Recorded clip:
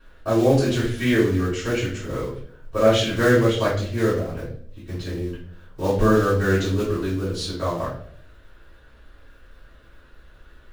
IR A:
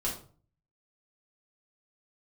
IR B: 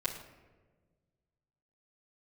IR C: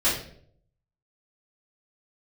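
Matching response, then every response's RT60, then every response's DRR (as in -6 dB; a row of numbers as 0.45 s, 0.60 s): C; 0.45 s, no single decay rate, 0.60 s; -5.0 dB, -9.0 dB, -10.5 dB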